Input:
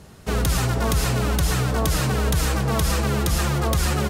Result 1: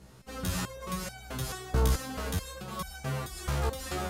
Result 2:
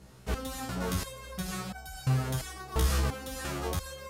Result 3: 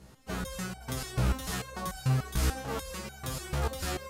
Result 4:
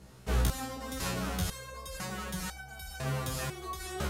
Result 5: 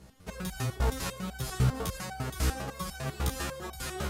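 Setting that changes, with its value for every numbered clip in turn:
step-sequenced resonator, speed: 4.6, 2.9, 6.8, 2, 10 Hertz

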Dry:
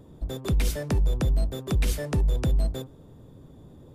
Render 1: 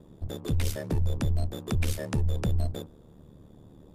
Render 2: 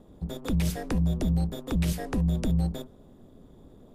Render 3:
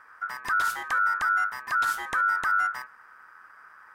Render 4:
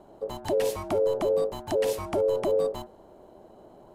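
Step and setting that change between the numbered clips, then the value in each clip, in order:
ring modulation, frequency: 37, 120, 1,400, 490 Hertz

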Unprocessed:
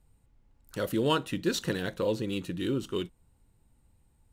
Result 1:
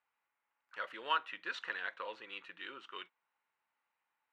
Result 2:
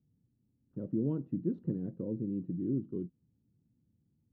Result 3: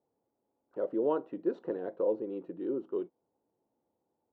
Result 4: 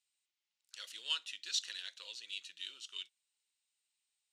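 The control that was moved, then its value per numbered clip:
flat-topped band-pass, frequency: 1,600, 190, 520, 4,500 Hertz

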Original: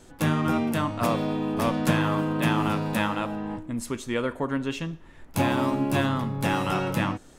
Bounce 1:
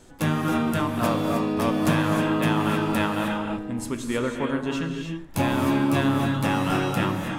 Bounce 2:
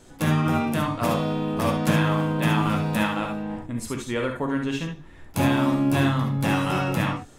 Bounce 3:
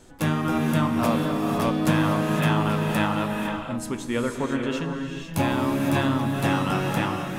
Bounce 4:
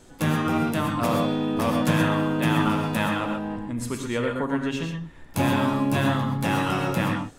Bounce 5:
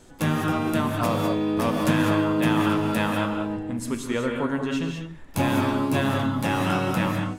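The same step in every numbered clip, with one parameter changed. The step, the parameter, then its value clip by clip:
reverb whose tail is shaped and stops, gate: 340, 90, 530, 150, 230 milliseconds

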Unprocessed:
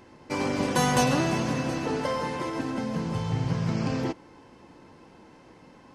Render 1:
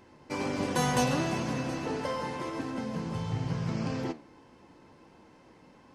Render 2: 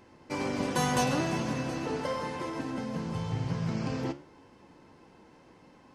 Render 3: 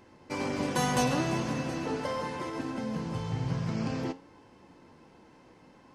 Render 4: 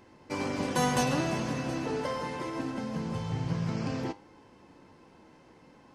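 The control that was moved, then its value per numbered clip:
flanger, speed: 1.5, 0.88, 0.45, 0.23 Hertz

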